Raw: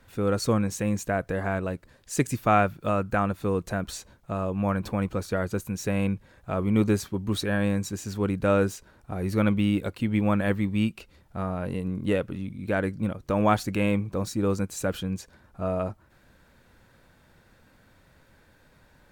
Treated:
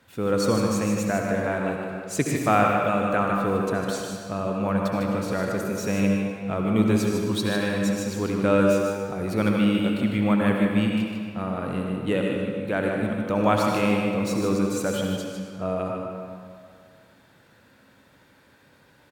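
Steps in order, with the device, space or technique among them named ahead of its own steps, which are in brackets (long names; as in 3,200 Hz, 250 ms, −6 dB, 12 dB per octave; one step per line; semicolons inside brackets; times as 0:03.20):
PA in a hall (high-pass filter 110 Hz; parametric band 3,200 Hz +3 dB 0.66 octaves; single-tap delay 152 ms −6.5 dB; convolution reverb RT60 2.2 s, pre-delay 62 ms, DRR 1.5 dB)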